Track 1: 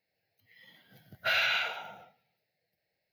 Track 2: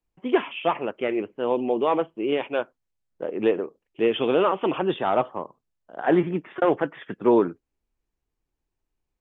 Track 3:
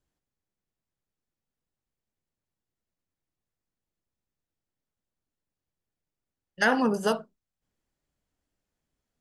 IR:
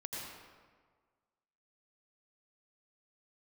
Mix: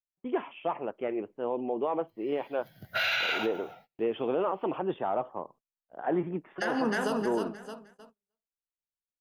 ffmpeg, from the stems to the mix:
-filter_complex "[0:a]dynaudnorm=f=610:g=3:m=11.5dB,adelay=1700,volume=-5dB[a];[1:a]lowpass=f=1.4k:p=1,adynamicequalizer=threshold=0.0178:dfrequency=770:dqfactor=1.4:tfrequency=770:tqfactor=1.4:attack=5:release=100:ratio=0.375:range=2.5:mode=boostabove:tftype=bell,volume=-7.5dB,asplit=2[b][c];[2:a]bandreject=f=50:t=h:w=6,bandreject=f=100:t=h:w=6,bandreject=f=150:t=h:w=6,bandreject=f=200:t=h:w=6,bandreject=f=250:t=h:w=6,bandreject=f=300:t=h:w=6,bandreject=f=350:t=h:w=6,bandreject=f=400:t=h:w=6,volume=-3dB,asplit=3[d][e][f];[e]volume=-14dB[g];[f]volume=-4dB[h];[c]apad=whole_len=212602[i];[a][i]sidechaincompress=threshold=-28dB:ratio=8:attack=24:release=471[j];[3:a]atrim=start_sample=2205[k];[g][k]afir=irnorm=-1:irlink=0[l];[h]aecho=0:1:309|618|927|1236:1|0.3|0.09|0.027[m];[j][b][d][l][m]amix=inputs=5:normalize=0,agate=range=-28dB:threshold=-54dB:ratio=16:detection=peak,alimiter=limit=-20dB:level=0:latency=1:release=55"

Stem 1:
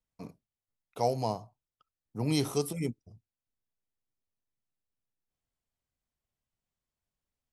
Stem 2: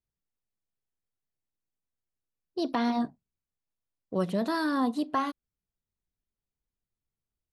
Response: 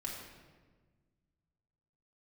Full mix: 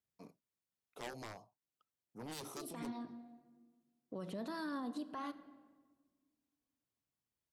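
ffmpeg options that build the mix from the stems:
-filter_complex "[0:a]highpass=210,aeval=exprs='0.178*(cos(1*acos(clip(val(0)/0.178,-1,1)))-cos(1*PI/2))+0.0891*(cos(7*acos(clip(val(0)/0.178,-1,1)))-cos(7*PI/2))':c=same,volume=-17dB,asplit=2[a][b];[1:a]highpass=100,acompressor=threshold=-33dB:ratio=6,volume=-3.5dB,asplit=2[c][d];[d]volume=-12dB[e];[b]apad=whole_len=331717[f];[c][f]sidechaincompress=threshold=-57dB:ratio=8:attack=16:release=363[g];[2:a]atrim=start_sample=2205[h];[e][h]afir=irnorm=-1:irlink=0[i];[a][g][i]amix=inputs=3:normalize=0,alimiter=level_in=10.5dB:limit=-24dB:level=0:latency=1:release=73,volume=-10.5dB"

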